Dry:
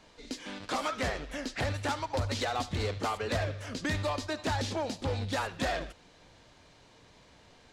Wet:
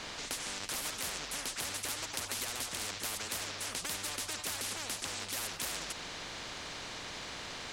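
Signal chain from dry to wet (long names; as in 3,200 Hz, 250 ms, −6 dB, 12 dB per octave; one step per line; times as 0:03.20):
every bin compressed towards the loudest bin 10 to 1
level +5.5 dB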